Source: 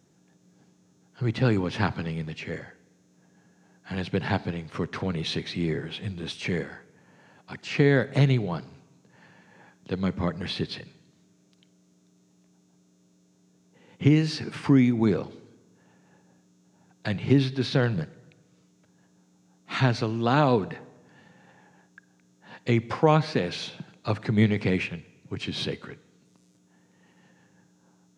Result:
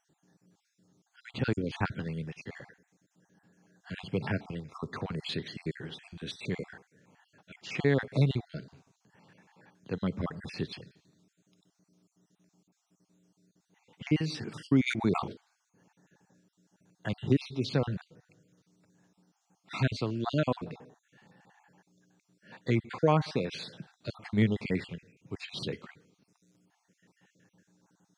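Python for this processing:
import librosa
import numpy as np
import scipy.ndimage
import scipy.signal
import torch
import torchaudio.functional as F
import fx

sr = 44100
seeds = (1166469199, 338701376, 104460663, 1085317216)

y = fx.spec_dropout(x, sr, seeds[0], share_pct=38)
y = fx.sustainer(y, sr, db_per_s=81.0, at=(14.86, 15.32), fade=0.02)
y = y * 10.0 ** (-4.5 / 20.0)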